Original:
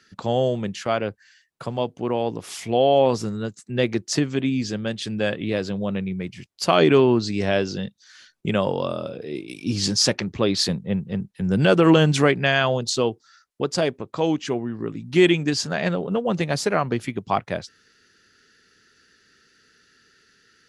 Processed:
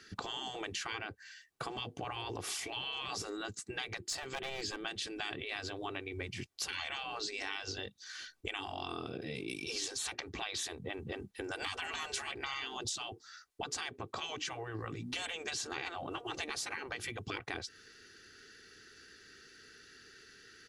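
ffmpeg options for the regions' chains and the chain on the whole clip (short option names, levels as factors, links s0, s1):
-filter_complex "[0:a]asettb=1/sr,asplit=3[s0][s1][s2];[s0]atrim=end=3.974[s3];[s1]atrim=start=3.97:end=4.78,asetpts=PTS-STARTPTS,afade=t=in:d=0.004:c=qsin,afade=t=out:st=0.806:d=0.004:c=qsin,bandreject=f=5800:w=5.8,aeval=exprs='clip(val(0),-1,0.075)':c=same[s4];[s2]atrim=start=4.776[s5];[s3][s4]acrossfade=d=0.004:c1=hsin:c2=qsin[s6];[s6][s5]acrossfade=d=0.004:c1=qsin:c2=hsin,afftfilt=real='re*lt(hypot(re,im),0.126)':imag='im*lt(hypot(re,im),0.126)':win_size=1024:overlap=0.75,aecho=1:1:2.6:0.37,acompressor=threshold=0.0126:ratio=6,volume=1.19"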